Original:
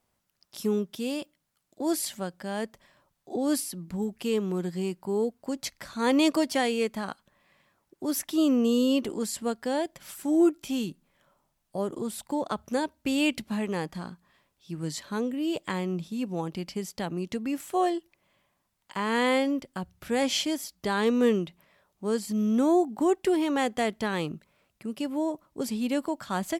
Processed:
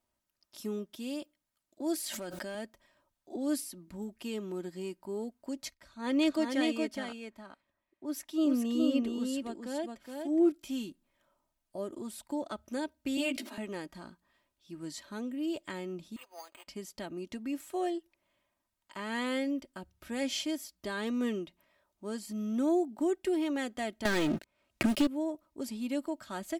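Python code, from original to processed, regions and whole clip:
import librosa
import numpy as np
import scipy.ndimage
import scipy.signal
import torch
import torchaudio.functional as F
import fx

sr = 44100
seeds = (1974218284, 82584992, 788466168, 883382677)

y = fx.chain(x, sr, fx.highpass(hz=210.0, slope=6),
    fx.overload_stage(gain_db=26.5),
    fx.env_flatten(amount_pct=100), at=(1.95, 2.55))
y = fx.chain(y, sr, fx.high_shelf(hz=5600.0, db=-7.5),
    fx.echo_single(ms=417, db=-3.5),
    fx.band_widen(depth_pct=40), at=(5.74, 10.52))
y = fx.chain(y, sr, fx.steep_highpass(hz=240.0, slope=96),
    fx.doubler(ms=15.0, db=-2.5),
    fx.sustainer(db_per_s=69.0), at=(13.17, 13.58))
y = fx.chain(y, sr, fx.cheby2_highpass(hz=190.0, order=4, stop_db=60),
    fx.resample_bad(factor=8, down='none', up='hold'), at=(16.16, 16.68))
y = fx.chain(y, sr, fx.high_shelf(hz=11000.0, db=-9.0),
    fx.leveller(passes=5),
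    fx.band_squash(depth_pct=100), at=(24.05, 25.07))
y = y + 0.56 * np.pad(y, (int(3.2 * sr / 1000.0), 0))[:len(y)]
y = fx.dynamic_eq(y, sr, hz=1000.0, q=3.8, threshold_db=-45.0, ratio=4.0, max_db=-6)
y = F.gain(torch.from_numpy(y), -8.5).numpy()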